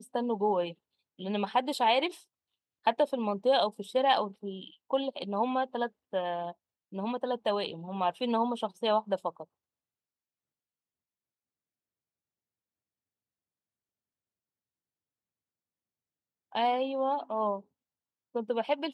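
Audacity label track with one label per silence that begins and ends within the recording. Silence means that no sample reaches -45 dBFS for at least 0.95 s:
9.440000	16.520000	silence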